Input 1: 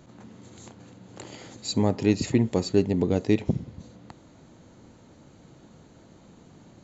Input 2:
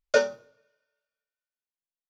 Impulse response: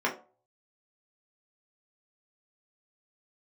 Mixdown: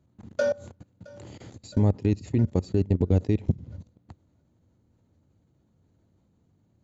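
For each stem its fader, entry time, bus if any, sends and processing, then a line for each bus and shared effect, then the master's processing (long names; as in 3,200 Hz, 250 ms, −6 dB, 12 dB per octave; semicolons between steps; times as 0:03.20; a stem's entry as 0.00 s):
−5.0 dB, 0.00 s, no send, no echo send, no processing
+2.0 dB, 0.25 s, send −23.5 dB, echo send −21.5 dB, comb filter 3.5 ms, depth 99%; automatic ducking −21 dB, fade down 1.65 s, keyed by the first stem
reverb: on, RT60 0.40 s, pre-delay 3 ms
echo: repeating echo 666 ms, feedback 44%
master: low-shelf EQ 480 Hz +7.5 dB; output level in coarse steps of 23 dB; parametric band 85 Hz +11 dB 0.84 octaves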